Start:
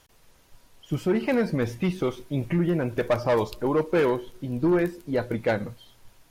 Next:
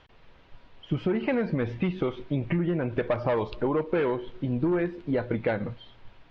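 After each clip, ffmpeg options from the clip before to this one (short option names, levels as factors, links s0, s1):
-af "lowpass=f=3500:w=0.5412,lowpass=f=3500:w=1.3066,acompressor=threshold=0.0447:ratio=6,volume=1.58"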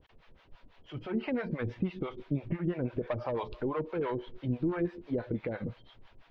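-filter_complex "[0:a]alimiter=limit=0.126:level=0:latency=1:release=186,acrossover=split=520[s0][s1];[s0]aeval=exprs='val(0)*(1-1/2+1/2*cos(2*PI*6*n/s))':c=same[s2];[s1]aeval=exprs='val(0)*(1-1/2-1/2*cos(2*PI*6*n/s))':c=same[s3];[s2][s3]amix=inputs=2:normalize=0"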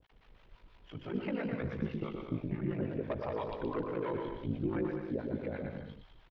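-af "aeval=exprs='val(0)*sin(2*PI*27*n/s)':c=same,aecho=1:1:120|204|262.8|304|332.8:0.631|0.398|0.251|0.158|0.1,volume=0.841"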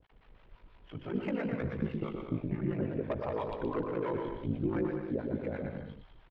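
-af "adynamicsmooth=sensitivity=6:basefreq=3900,volume=1.26"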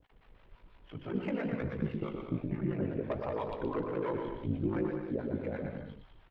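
-af "flanger=delay=3.3:depth=7.9:regen=83:speed=1.2:shape=sinusoidal,volume=1.58"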